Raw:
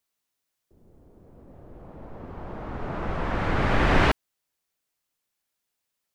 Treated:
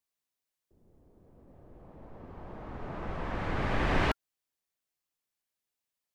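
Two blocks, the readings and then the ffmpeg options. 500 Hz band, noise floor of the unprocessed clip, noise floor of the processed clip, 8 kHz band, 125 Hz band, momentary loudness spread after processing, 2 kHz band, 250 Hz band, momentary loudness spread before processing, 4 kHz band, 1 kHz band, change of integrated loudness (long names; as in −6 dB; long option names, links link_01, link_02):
−7.5 dB, −82 dBFS, below −85 dBFS, can't be measured, −7.5 dB, 21 LU, −7.5 dB, −7.5 dB, 21 LU, −7.5 dB, −7.5 dB, −7.5 dB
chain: -af "bandreject=frequency=1400:width=21,volume=-7.5dB"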